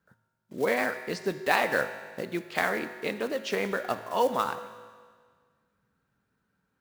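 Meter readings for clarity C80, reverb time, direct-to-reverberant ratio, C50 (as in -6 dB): 11.5 dB, 1.7 s, 9.0 dB, 10.5 dB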